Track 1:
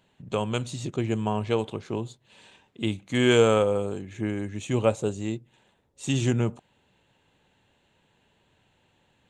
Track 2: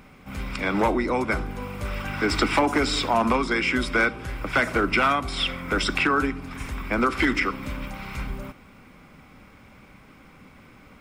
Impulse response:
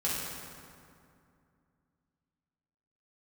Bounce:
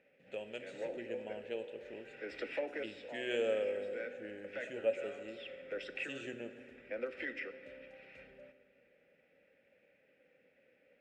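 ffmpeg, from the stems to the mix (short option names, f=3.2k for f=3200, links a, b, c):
-filter_complex "[0:a]equalizer=f=125:t=o:w=0.33:g=-7,equalizer=f=500:t=o:w=0.33:g=-11,equalizer=f=8k:t=o:w=0.33:g=7,acrusher=bits=8:mix=0:aa=0.000001,volume=-2.5dB,asplit=3[a][b][c];[b]volume=-14dB[d];[1:a]volume=-6.5dB,asplit=2[e][f];[f]volume=-20dB[g];[c]apad=whole_len=485536[h];[e][h]sidechaincompress=threshold=-34dB:ratio=8:attack=12:release=631[i];[2:a]atrim=start_sample=2205[j];[d][g]amix=inputs=2:normalize=0[k];[k][j]afir=irnorm=-1:irlink=0[l];[a][i][l]amix=inputs=3:normalize=0,asplit=3[m][n][o];[m]bandpass=f=530:t=q:w=8,volume=0dB[p];[n]bandpass=f=1.84k:t=q:w=8,volume=-6dB[q];[o]bandpass=f=2.48k:t=q:w=8,volume=-9dB[r];[p][q][r]amix=inputs=3:normalize=0"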